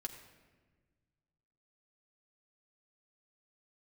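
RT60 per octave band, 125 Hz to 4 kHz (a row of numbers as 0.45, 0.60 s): 2.4, 2.0, 1.6, 1.2, 1.2, 0.95 s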